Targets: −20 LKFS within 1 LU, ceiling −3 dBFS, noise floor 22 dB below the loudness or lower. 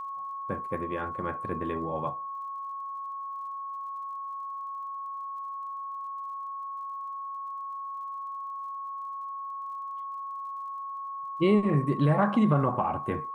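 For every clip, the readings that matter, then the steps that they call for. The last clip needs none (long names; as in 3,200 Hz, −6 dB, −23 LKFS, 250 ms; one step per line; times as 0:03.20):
crackle rate 44 per second; interfering tone 1,100 Hz; level of the tone −34 dBFS; integrated loudness −32.0 LKFS; sample peak −11.0 dBFS; target loudness −20.0 LKFS
→ click removal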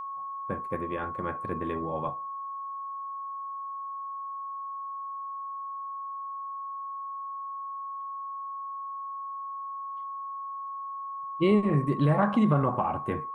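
crackle rate 0.15 per second; interfering tone 1,100 Hz; level of the tone −34 dBFS
→ notch filter 1,100 Hz, Q 30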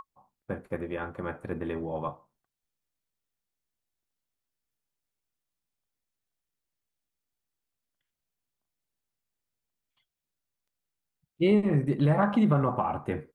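interfering tone none found; integrated loudness −28.0 LKFS; sample peak −12.0 dBFS; target loudness −20.0 LKFS
→ level +8 dB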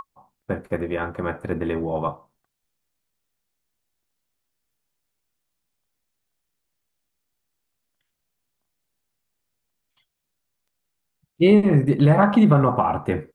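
integrated loudness −20.0 LKFS; sample peak −4.0 dBFS; background noise floor −79 dBFS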